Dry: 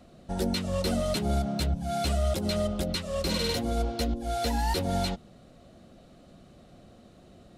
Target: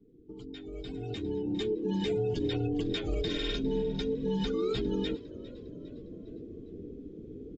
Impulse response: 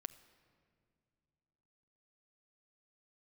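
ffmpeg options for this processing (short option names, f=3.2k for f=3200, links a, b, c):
-filter_complex "[0:a]flanger=delay=9.5:depth=3.8:regen=84:speed=0.72:shape=sinusoidal,afreqshift=-500,acompressor=threshold=-43dB:ratio=3,afftdn=nr=24:nf=-54,alimiter=level_in=12.5dB:limit=-24dB:level=0:latency=1:release=130,volume=-12.5dB,equalizer=f=140:w=6.1:g=-5,asplit=2[a][b];[b]asplit=4[c][d][e][f];[c]adelay=405,afreqshift=53,volume=-19.5dB[g];[d]adelay=810,afreqshift=106,volume=-25.9dB[h];[e]adelay=1215,afreqshift=159,volume=-32.3dB[i];[f]adelay=1620,afreqshift=212,volume=-38.6dB[j];[g][h][i][j]amix=inputs=4:normalize=0[k];[a][k]amix=inputs=2:normalize=0,dynaudnorm=f=350:g=7:m=14.5dB,highshelf=f=4.6k:g=-2.5,bandreject=f=960:w=8" -ar 16000 -c:a aac -b:a 48k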